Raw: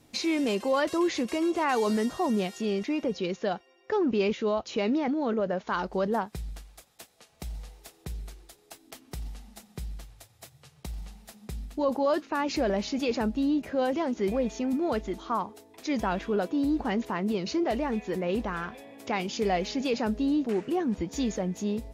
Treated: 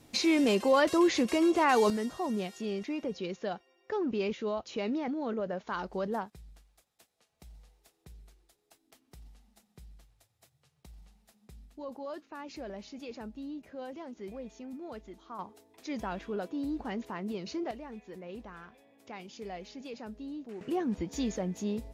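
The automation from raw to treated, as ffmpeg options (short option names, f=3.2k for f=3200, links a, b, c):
-af "asetnsamples=n=441:p=0,asendcmd='1.9 volume volume -6dB;6.3 volume volume -15dB;15.39 volume volume -8dB;17.71 volume volume -15dB;20.61 volume volume -3.5dB',volume=1.5dB"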